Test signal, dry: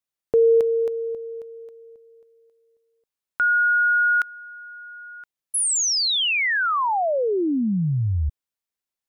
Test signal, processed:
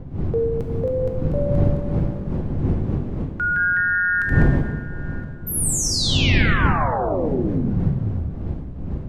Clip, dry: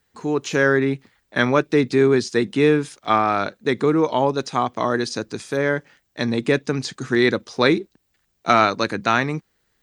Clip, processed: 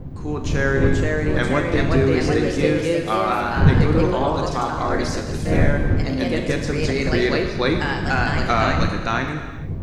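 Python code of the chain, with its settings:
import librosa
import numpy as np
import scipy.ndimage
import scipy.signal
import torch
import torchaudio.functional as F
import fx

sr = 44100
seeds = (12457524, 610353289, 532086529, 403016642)

y = fx.dmg_wind(x, sr, seeds[0], corner_hz=140.0, level_db=-21.0)
y = fx.echo_pitch(y, sr, ms=535, semitones=2, count=2, db_per_echo=-3.0)
y = fx.rev_gated(y, sr, seeds[1], gate_ms=480, shape='falling', drr_db=3.5)
y = F.gain(torch.from_numpy(y), -5.0).numpy()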